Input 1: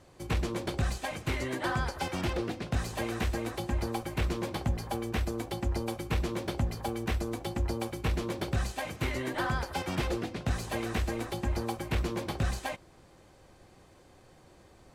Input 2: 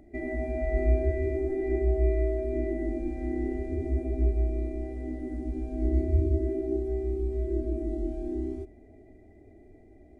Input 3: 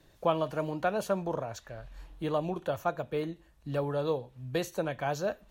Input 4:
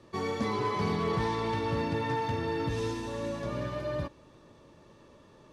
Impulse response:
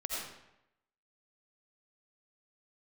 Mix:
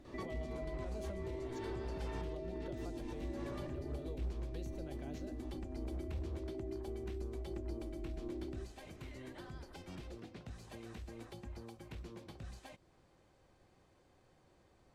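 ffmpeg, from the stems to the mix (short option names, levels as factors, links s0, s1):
-filter_complex "[0:a]volume=0.282[s0];[1:a]volume=0.501[s1];[2:a]volume=0.398,asplit=2[s2][s3];[3:a]acompressor=threshold=0.0178:ratio=6,adelay=50,volume=1.33[s4];[s3]apad=whole_len=245725[s5];[s4][s5]sidechaincompress=threshold=0.00251:ratio=8:attack=11:release=115[s6];[s0][s2]amix=inputs=2:normalize=0,acrossover=split=460|3000[s7][s8][s9];[s8]acompressor=threshold=0.00224:ratio=6[s10];[s7][s10][s9]amix=inputs=3:normalize=0,alimiter=level_in=5.62:limit=0.0631:level=0:latency=1:release=422,volume=0.178,volume=1[s11];[s1][s6]amix=inputs=2:normalize=0,asoftclip=type=hard:threshold=0.0447,acompressor=threshold=0.00708:ratio=3,volume=1[s12];[s11][s12]amix=inputs=2:normalize=0,highshelf=f=10000:g=-10"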